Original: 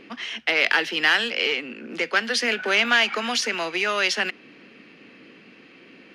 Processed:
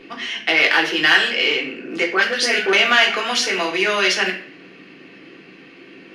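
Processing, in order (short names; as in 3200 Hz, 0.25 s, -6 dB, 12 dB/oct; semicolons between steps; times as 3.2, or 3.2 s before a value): 2.06–2.73 dispersion highs, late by 58 ms, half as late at 1700 Hz; reverb RT60 0.50 s, pre-delay 3 ms, DRR -1.5 dB; gain +1.5 dB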